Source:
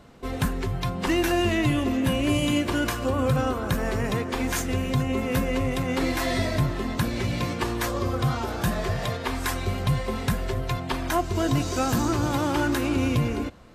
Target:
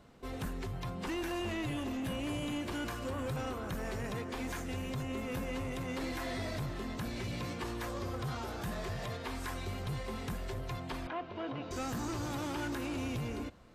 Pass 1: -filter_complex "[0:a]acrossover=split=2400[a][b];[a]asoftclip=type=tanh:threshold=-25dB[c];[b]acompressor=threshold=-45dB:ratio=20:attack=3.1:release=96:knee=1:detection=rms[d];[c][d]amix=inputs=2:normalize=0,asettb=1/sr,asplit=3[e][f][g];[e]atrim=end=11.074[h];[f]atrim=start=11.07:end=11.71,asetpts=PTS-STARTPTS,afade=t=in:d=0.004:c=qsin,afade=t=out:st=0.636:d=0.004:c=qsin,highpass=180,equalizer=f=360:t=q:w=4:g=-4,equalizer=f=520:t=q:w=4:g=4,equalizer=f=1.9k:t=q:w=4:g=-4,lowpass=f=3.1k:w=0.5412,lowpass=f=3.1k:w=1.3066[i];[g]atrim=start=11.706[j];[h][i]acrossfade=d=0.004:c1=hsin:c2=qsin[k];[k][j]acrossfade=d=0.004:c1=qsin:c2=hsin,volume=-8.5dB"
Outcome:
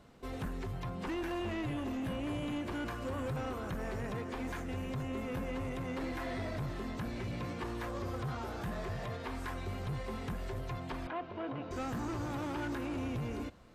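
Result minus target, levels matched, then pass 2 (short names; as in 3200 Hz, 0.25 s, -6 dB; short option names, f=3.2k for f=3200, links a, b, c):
compressor: peak gain reduction +8.5 dB
-filter_complex "[0:a]acrossover=split=2400[a][b];[a]asoftclip=type=tanh:threshold=-25dB[c];[b]acompressor=threshold=-36dB:ratio=20:attack=3.1:release=96:knee=1:detection=rms[d];[c][d]amix=inputs=2:normalize=0,asettb=1/sr,asplit=3[e][f][g];[e]atrim=end=11.074[h];[f]atrim=start=11.07:end=11.71,asetpts=PTS-STARTPTS,afade=t=in:d=0.004:c=qsin,afade=t=out:st=0.636:d=0.004:c=qsin,highpass=180,equalizer=f=360:t=q:w=4:g=-4,equalizer=f=520:t=q:w=4:g=4,equalizer=f=1.9k:t=q:w=4:g=-4,lowpass=f=3.1k:w=0.5412,lowpass=f=3.1k:w=1.3066[i];[g]atrim=start=11.706[j];[h][i]acrossfade=d=0.004:c1=hsin:c2=qsin[k];[k][j]acrossfade=d=0.004:c1=qsin:c2=hsin,volume=-8.5dB"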